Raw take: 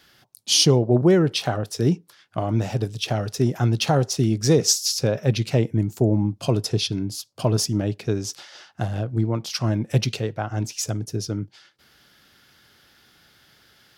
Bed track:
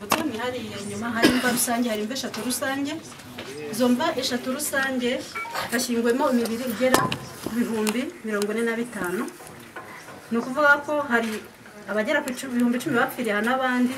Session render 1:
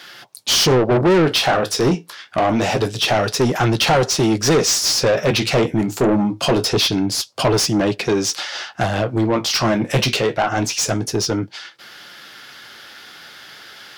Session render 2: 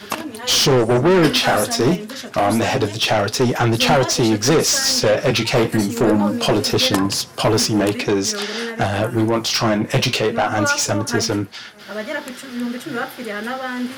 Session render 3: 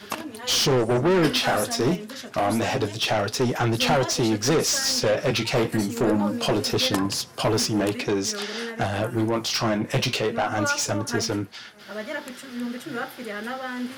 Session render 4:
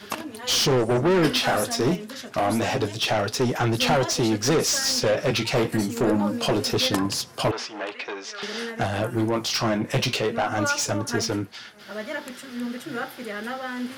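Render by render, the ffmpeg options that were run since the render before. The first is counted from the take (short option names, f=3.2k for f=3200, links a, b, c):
-filter_complex "[0:a]flanger=delay=5.6:depth=9.3:regen=-52:speed=0.25:shape=sinusoidal,asplit=2[a][b];[b]highpass=f=720:p=1,volume=29dB,asoftclip=type=tanh:threshold=-6.5dB[c];[a][c]amix=inputs=2:normalize=0,lowpass=f=4.4k:p=1,volume=-6dB"
-filter_complex "[1:a]volume=-3dB[a];[0:a][a]amix=inputs=2:normalize=0"
-af "volume=-6dB"
-filter_complex "[0:a]asettb=1/sr,asplit=3[a][b][c];[a]atrim=end=7.514[d];[b]atrim=start=7.51:end=8.43,asetpts=PTS-STARTPTS,afade=t=in:d=0.004:c=qsin,afade=t=out:st=0.916:d=0.004:c=qsin,highpass=740,lowpass=3.3k[e];[c]atrim=start=8.426[f];[d][e]acrossfade=d=0.004:c1=hsin:c2=qsin[g];[g][f]acrossfade=d=0.004:c1=qsin:c2=hsin"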